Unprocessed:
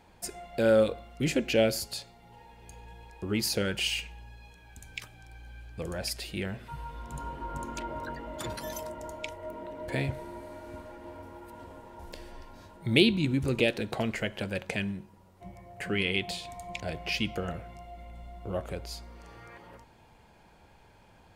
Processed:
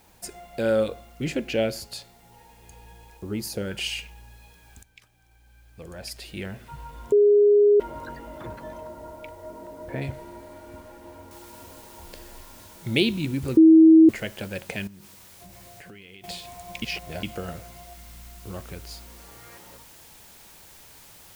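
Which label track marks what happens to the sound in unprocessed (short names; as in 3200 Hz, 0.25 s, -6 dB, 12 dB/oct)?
1.130000	1.910000	high shelf 4900 Hz -5.5 dB
3.170000	3.710000	bell 2900 Hz -9 dB 2.3 oct
4.830000	6.450000	fade in quadratic, from -13.5 dB
7.120000	7.800000	bleep 412 Hz -13 dBFS
8.380000	10.020000	LPF 1700 Hz
11.310000	11.310000	noise floor step -61 dB -50 dB
13.570000	14.090000	bleep 321 Hz -8.5 dBFS
14.870000	16.240000	compressor 10:1, threshold -42 dBFS
16.820000	17.230000	reverse
17.930000	18.870000	bell 590 Hz -9 dB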